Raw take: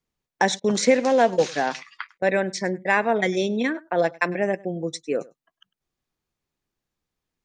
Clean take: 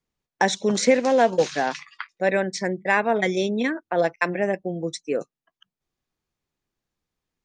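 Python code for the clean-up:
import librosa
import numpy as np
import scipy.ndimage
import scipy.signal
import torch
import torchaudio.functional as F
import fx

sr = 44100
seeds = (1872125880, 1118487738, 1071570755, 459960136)

y = fx.fix_interpolate(x, sr, at_s=(0.6, 2.18), length_ms=40.0)
y = fx.fix_echo_inverse(y, sr, delay_ms=101, level_db=-23.5)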